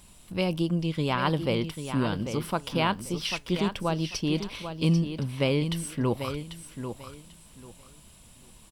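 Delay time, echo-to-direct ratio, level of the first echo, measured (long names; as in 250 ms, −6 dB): 792 ms, −9.0 dB, −9.0 dB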